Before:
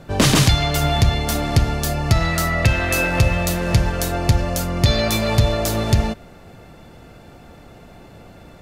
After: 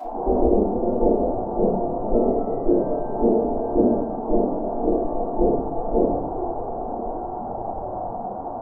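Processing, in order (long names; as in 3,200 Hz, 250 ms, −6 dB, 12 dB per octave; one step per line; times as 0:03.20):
linear delta modulator 64 kbit/s, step −15 dBFS
in parallel at −3.5 dB: wave folding −13 dBFS
on the sum: Butterworth low-pass 570 Hz 36 dB per octave
gate on every frequency bin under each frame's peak −20 dB weak
on a send: feedback delay with all-pass diffusion 904 ms, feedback 45%, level −12 dB
on the sum: rectangular room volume 93 cubic metres, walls mixed, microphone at 3.8 metres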